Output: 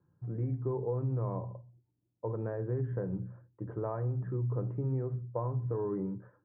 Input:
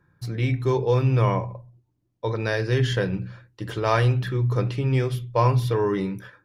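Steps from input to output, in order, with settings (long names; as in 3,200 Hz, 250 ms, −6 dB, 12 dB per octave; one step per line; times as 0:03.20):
high-pass filter 79 Hz
downward compressor, threshold −22 dBFS, peak gain reduction 8 dB
Bessel low-pass filter 780 Hz, order 6
level −6.5 dB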